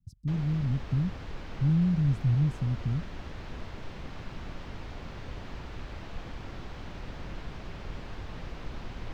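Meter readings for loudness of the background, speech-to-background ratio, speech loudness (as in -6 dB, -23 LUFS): -43.0 LUFS, 14.5 dB, -28.5 LUFS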